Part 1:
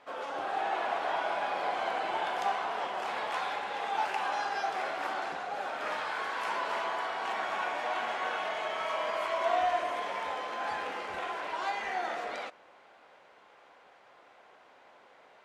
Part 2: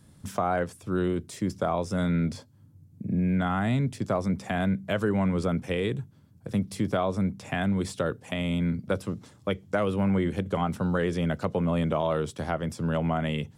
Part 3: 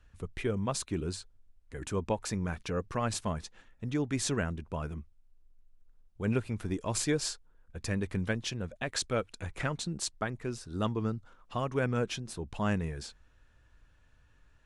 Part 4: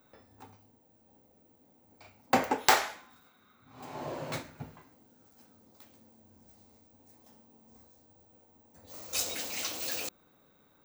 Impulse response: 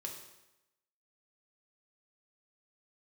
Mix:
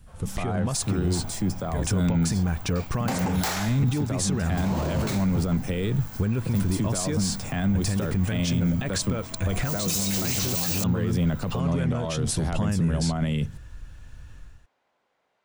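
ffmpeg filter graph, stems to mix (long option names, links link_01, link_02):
-filter_complex "[0:a]volume=-16dB[link_01];[1:a]acompressor=threshold=-26dB:ratio=6,volume=-8.5dB[link_02];[2:a]acompressor=threshold=-37dB:ratio=6,volume=1dB[link_03];[3:a]asoftclip=type=tanh:threshold=-19dB,adelay=750,volume=1dB[link_04];[link_02][link_03][link_04]amix=inputs=3:normalize=0,dynaudnorm=framelen=130:gausssize=5:maxgain=11dB,alimiter=limit=-22.5dB:level=0:latency=1:release=30,volume=0dB[link_05];[link_01][link_05]amix=inputs=2:normalize=0,bass=frequency=250:gain=9,treble=frequency=4000:gain=7"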